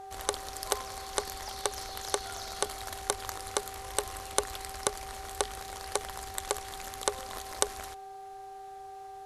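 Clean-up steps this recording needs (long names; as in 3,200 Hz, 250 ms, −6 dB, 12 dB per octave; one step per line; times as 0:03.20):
hum removal 397.2 Hz, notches 4
notch filter 770 Hz, Q 30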